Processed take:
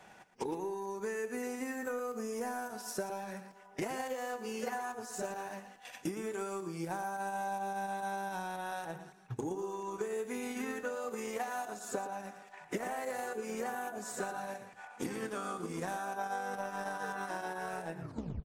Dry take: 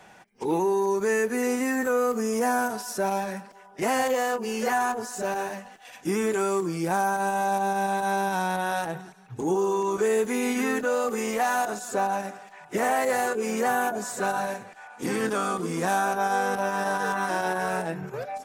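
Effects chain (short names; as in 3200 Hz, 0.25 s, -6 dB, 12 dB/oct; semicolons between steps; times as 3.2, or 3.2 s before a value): tape stop at the end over 0.46 s; transient shaper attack +11 dB, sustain -3 dB; compressor 3:1, threshold -32 dBFS, peak gain reduction 14 dB; echo 0.116 s -11.5 dB; gain -6 dB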